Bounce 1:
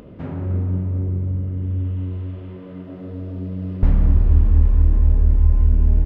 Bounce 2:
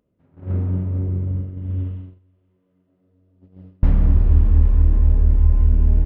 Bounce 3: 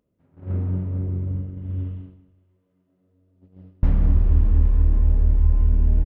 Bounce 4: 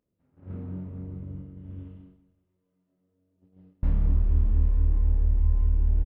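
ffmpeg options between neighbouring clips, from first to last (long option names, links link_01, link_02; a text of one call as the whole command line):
ffmpeg -i in.wav -af "agate=range=-30dB:threshold=-23dB:ratio=16:detection=peak" out.wav
ffmpeg -i in.wav -af "aecho=1:1:187|374|561:0.178|0.0587|0.0194,volume=-3dB" out.wav
ffmpeg -i in.wav -filter_complex "[0:a]asplit=2[link_01][link_02];[link_02]adelay=28,volume=-4.5dB[link_03];[link_01][link_03]amix=inputs=2:normalize=0,volume=-9dB" out.wav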